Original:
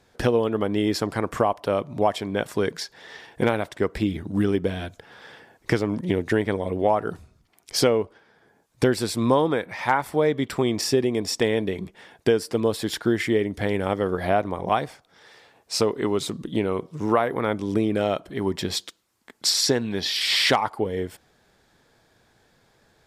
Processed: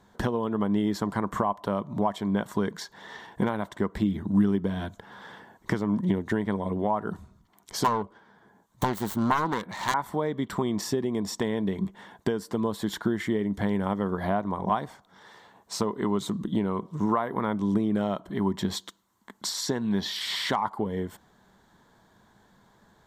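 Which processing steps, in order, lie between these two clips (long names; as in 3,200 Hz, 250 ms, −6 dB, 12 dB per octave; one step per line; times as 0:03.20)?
0:07.84–0:09.94: phase distortion by the signal itself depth 0.91 ms
downward compressor 2 to 1, threshold −29 dBFS, peak gain reduction 8.5 dB
thirty-one-band graphic EQ 200 Hz +10 dB, 500 Hz −4 dB, 1,000 Hz +9 dB, 2,500 Hz −11 dB, 5,000 Hz −8 dB, 10,000 Hz −8 dB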